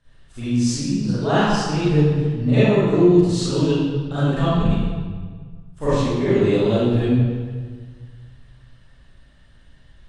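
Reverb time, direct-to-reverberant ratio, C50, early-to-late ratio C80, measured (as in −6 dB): 1.6 s, −14.0 dB, −7.0 dB, −2.5 dB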